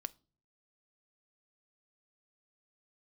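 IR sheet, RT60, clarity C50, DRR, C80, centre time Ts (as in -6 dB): not exponential, 24.5 dB, 13.0 dB, 31.0 dB, 1 ms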